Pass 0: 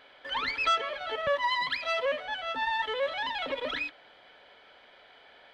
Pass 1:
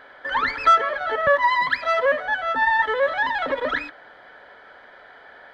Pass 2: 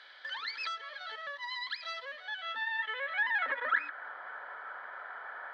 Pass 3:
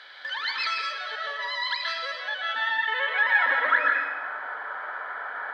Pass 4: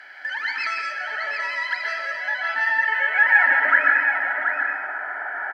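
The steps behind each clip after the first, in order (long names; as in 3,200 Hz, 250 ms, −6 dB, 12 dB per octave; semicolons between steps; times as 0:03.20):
high shelf with overshoot 2,100 Hz −6 dB, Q 3; level +8.5 dB
downward compressor 3 to 1, threshold −33 dBFS, peak gain reduction 15.5 dB; band-pass filter sweep 4,300 Hz → 1,200 Hz, 0:02.11–0:04.14; level +7.5 dB
dense smooth reverb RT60 1.1 s, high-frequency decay 0.8×, pre-delay 110 ms, DRR 0 dB; level +7 dB
phaser with its sweep stopped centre 740 Hz, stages 8; on a send: single-tap delay 728 ms −6.5 dB; on the sum: level +6 dB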